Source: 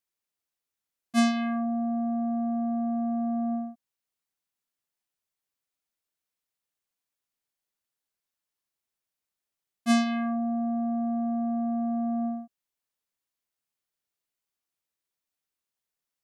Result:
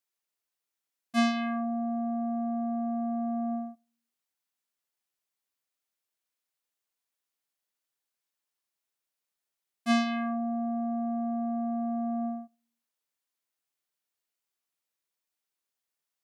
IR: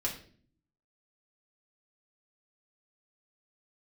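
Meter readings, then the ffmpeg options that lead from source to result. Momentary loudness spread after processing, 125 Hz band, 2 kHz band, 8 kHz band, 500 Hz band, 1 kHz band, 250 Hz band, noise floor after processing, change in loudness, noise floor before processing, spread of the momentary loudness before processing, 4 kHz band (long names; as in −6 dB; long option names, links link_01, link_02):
7 LU, can't be measured, 0.0 dB, −6.0 dB, −0.5 dB, −0.5 dB, −3.0 dB, below −85 dBFS, −2.5 dB, below −85 dBFS, 6 LU, −1.0 dB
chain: -filter_complex "[0:a]acrossover=split=5100[link_01][link_02];[link_02]acompressor=threshold=-44dB:ratio=4:attack=1:release=60[link_03];[link_01][link_03]amix=inputs=2:normalize=0,lowshelf=frequency=190:gain=-10,asplit=2[link_04][link_05];[1:a]atrim=start_sample=2205,asetrate=66150,aresample=44100[link_06];[link_05][link_06]afir=irnorm=-1:irlink=0,volume=-22.5dB[link_07];[link_04][link_07]amix=inputs=2:normalize=0"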